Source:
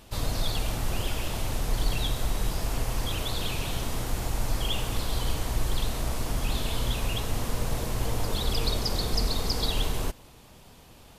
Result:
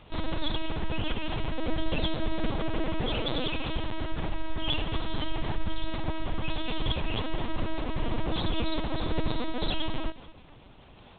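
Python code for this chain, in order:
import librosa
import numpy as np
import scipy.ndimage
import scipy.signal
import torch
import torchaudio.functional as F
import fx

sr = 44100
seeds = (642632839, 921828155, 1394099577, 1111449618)

y = fx.peak_eq(x, sr, hz=480.0, db=8.5, octaves=0.45, at=(1.58, 3.47))
y = fx.echo_feedback(y, sr, ms=218, feedback_pct=24, wet_db=-19)
y = fx.lpc_vocoder(y, sr, seeds[0], excitation='pitch_kept', order=10)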